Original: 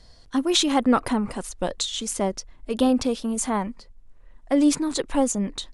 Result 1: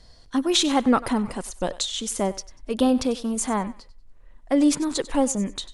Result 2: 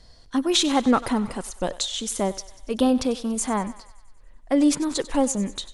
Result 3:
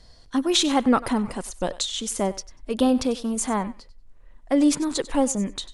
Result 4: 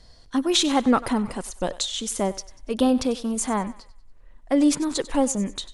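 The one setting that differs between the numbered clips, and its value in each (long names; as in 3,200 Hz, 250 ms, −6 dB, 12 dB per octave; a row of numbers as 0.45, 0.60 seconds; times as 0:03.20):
feedback echo with a high-pass in the loop, feedback: 27, 62, 16, 42%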